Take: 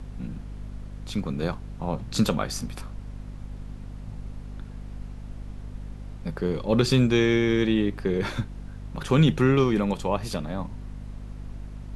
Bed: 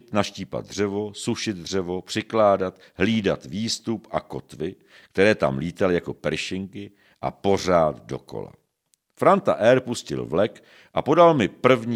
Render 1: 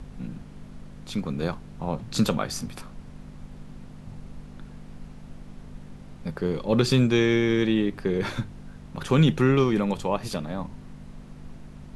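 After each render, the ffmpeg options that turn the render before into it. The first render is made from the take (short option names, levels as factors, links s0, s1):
-af "bandreject=f=50:t=h:w=6,bandreject=f=100:t=h:w=6"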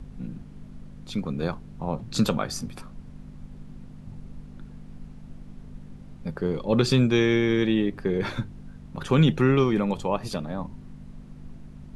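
-af "afftdn=nr=6:nf=-44"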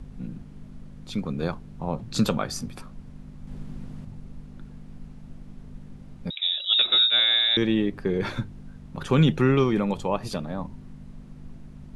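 -filter_complex "[0:a]asettb=1/sr,asplit=3[s0][s1][s2];[s0]atrim=end=3.474[s3];[s1]atrim=start=3.47:end=4.05,asetpts=PTS-STARTPTS,afade=t=in:d=0.004:c=qsin,afade=t=out:st=0.576:d=0.004:c=qsin,acontrast=33[s4];[s2]atrim=start=4.046[s5];[s3][s4]acrossfade=d=0.004:c1=hsin:c2=qsin[s6];[s6][s5]acrossfade=d=0.004:c1=qsin:c2=hsin,asettb=1/sr,asplit=3[s7][s8][s9];[s7]atrim=end=6.304[s10];[s8]atrim=start=6.3:end=7.57,asetpts=PTS-STARTPTS,afade=t=in:d=0.004:c=qsin,afade=t=out:st=1.266:d=0.004:c=qsin,lowpass=f=3300:t=q:w=0.5098,lowpass=f=3300:t=q:w=0.6013,lowpass=f=3300:t=q:w=0.9,lowpass=f=3300:t=q:w=2.563,afreqshift=-3900[s11];[s9]atrim=start=7.566[s12];[s10][s11]acrossfade=d=0.004:c1=hsin:c2=qsin[s13];[s13][s12]acrossfade=d=0.004:c1=qsin:c2=hsin"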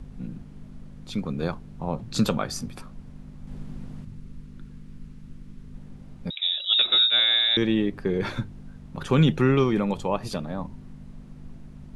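-filter_complex "[0:a]asettb=1/sr,asplit=3[s0][s1][s2];[s0]atrim=end=4.024[s3];[s1]atrim=start=4.02:end=5.74,asetpts=PTS-STARTPTS,afade=t=in:d=0.004:c=qsin,afade=t=out:st=1.716:d=0.004:c=qsin,equalizer=f=710:t=o:w=0.77:g=-12[s4];[s2]atrim=start=5.736[s5];[s3][s4]acrossfade=d=0.004:c1=hsin:c2=qsin[s6];[s6][s5]acrossfade=d=0.004:c1=qsin:c2=hsin"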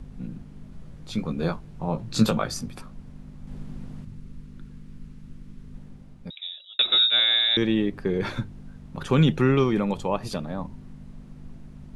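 -filter_complex "[0:a]asettb=1/sr,asplit=3[s0][s1][s2];[s0]atrim=end=0.704[s3];[s1]atrim=start=0.7:end=2.54,asetpts=PTS-STARTPTS,afade=t=in:d=0.004:c=qsin,afade=t=out:st=1.836:d=0.004:c=qsin,asplit=2[s4][s5];[s5]adelay=18,volume=0.596[s6];[s4][s6]amix=inputs=2:normalize=0,atrim=end_sample=81144[s7];[s2]atrim=start=2.536[s8];[s3][s7]acrossfade=d=0.004:c1=hsin:c2=qsin[s9];[s9][s8]acrossfade=d=0.004:c1=qsin:c2=hsin,asplit=2[s10][s11];[s10]atrim=end=6.79,asetpts=PTS-STARTPTS,afade=t=out:st=5.75:d=1.04[s12];[s11]atrim=start=6.79,asetpts=PTS-STARTPTS,afade=t=in:d=0.004:c=hsin[s13];[s12][s13]concat=n=2:v=0:a=1"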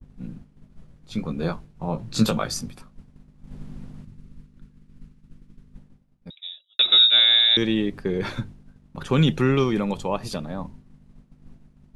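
-af "agate=range=0.0224:threshold=0.0224:ratio=3:detection=peak,adynamicequalizer=threshold=0.0224:dfrequency=2700:dqfactor=0.7:tfrequency=2700:tqfactor=0.7:attack=5:release=100:ratio=0.375:range=3:mode=boostabove:tftype=highshelf"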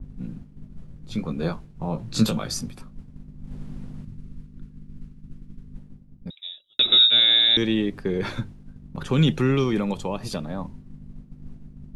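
-filter_complex "[0:a]acrossover=split=380|2700[s0][s1][s2];[s0]acompressor=mode=upward:threshold=0.0398:ratio=2.5[s3];[s1]alimiter=limit=0.0794:level=0:latency=1:release=92[s4];[s3][s4][s2]amix=inputs=3:normalize=0"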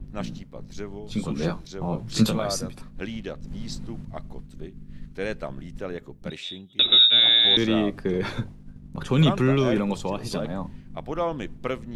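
-filter_complex "[1:a]volume=0.237[s0];[0:a][s0]amix=inputs=2:normalize=0"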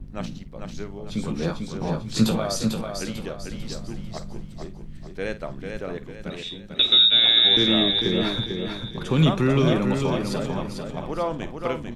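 -filter_complex "[0:a]asplit=2[s0][s1];[s1]adelay=50,volume=0.211[s2];[s0][s2]amix=inputs=2:normalize=0,aecho=1:1:446|892|1338|1784|2230:0.531|0.207|0.0807|0.0315|0.0123"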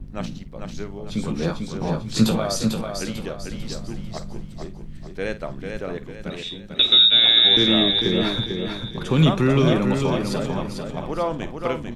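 -af "volume=1.26"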